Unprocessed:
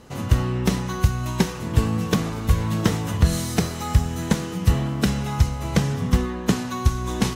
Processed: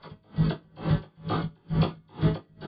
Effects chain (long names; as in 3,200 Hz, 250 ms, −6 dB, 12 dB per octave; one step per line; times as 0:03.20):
every frequency bin delayed by itself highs early, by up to 134 ms
dynamic equaliser 510 Hz, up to +5 dB, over −44 dBFS, Q 7.9
harmonic and percussive parts rebalanced harmonic −11 dB
parametric band 96 Hz +11 dB 0.27 octaves
phase-vocoder stretch with locked phases 0.63×
Chebyshev low-pass with heavy ripple 2,700 Hz, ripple 9 dB
double-tracking delay 33 ms −3.5 dB
convolution reverb RT60 1.0 s, pre-delay 3 ms, DRR −4 dB
wrong playback speed 45 rpm record played at 78 rpm
tremolo with a sine in dB 2.2 Hz, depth 38 dB